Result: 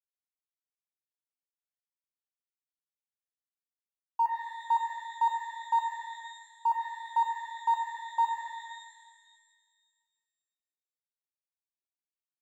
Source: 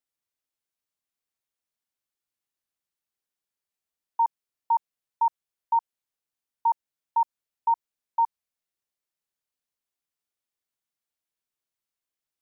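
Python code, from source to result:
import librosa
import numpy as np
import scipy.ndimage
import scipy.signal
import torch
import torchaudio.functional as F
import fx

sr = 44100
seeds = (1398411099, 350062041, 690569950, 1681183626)

y = np.sign(x) * np.maximum(np.abs(x) - 10.0 ** (-51.5 / 20.0), 0.0)
y = fx.rev_shimmer(y, sr, seeds[0], rt60_s=1.7, semitones=12, shimmer_db=-8, drr_db=3.0)
y = F.gain(torch.from_numpy(y), -4.5).numpy()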